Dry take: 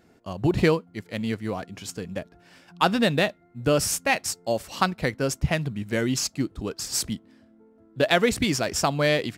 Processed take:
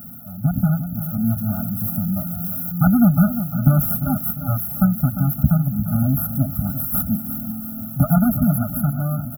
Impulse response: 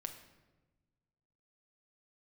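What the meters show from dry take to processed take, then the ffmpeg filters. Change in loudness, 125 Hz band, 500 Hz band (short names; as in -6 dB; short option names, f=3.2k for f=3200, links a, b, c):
+5.0 dB, +12.0 dB, -9.5 dB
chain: -filter_complex "[0:a]aeval=exprs='val(0)+0.5*0.0299*sgn(val(0))':c=same,aeval=exprs='0.631*(cos(1*acos(clip(val(0)/0.631,-1,1)))-cos(1*PI/2))+0.0355*(cos(3*acos(clip(val(0)/0.631,-1,1)))-cos(3*PI/2))+0.01*(cos(4*acos(clip(val(0)/0.631,-1,1)))-cos(4*PI/2))+0.0447*(cos(6*acos(clip(val(0)/0.631,-1,1)))-cos(6*PI/2))+0.224*(cos(8*acos(clip(val(0)/0.631,-1,1)))-cos(8*PI/2))':c=same,highpass=f=50:w=0.5412,highpass=f=50:w=1.3066,equalizer=f=950:t=o:w=1.9:g=-14.5,acrossover=split=5900[a][b];[b]acompressor=threshold=-40dB:ratio=4:attack=1:release=60[c];[a][c]amix=inputs=2:normalize=0,afftfilt=real='re*(1-between(b*sr/4096,1500,11000))':imag='im*(1-between(b*sr/4096,1500,11000))':win_size=4096:overlap=0.75,dynaudnorm=f=180:g=11:m=11dB,crystalizer=i=6:c=0,equalizer=f=170:t=o:w=1.4:g=7.5,asplit=2[d][e];[e]aecho=0:1:350|700|1050|1400:0.282|0.116|0.0474|0.0194[f];[d][f]amix=inputs=2:normalize=0,afftfilt=real='re*eq(mod(floor(b*sr/1024/300),2),0)':imag='im*eq(mod(floor(b*sr/1024/300),2),0)':win_size=1024:overlap=0.75,volume=-3.5dB"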